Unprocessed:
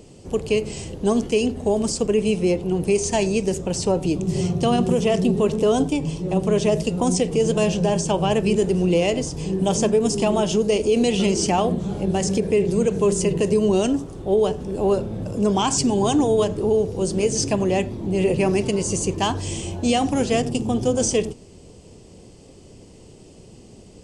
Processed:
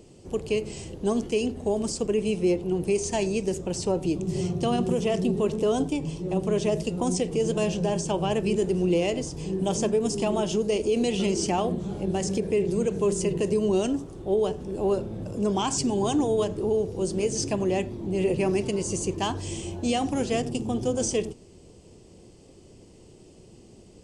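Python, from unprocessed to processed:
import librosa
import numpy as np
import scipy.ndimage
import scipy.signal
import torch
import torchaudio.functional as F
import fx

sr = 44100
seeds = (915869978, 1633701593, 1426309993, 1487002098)

y = fx.peak_eq(x, sr, hz=350.0, db=5.0, octaves=0.21)
y = y * 10.0 ** (-6.0 / 20.0)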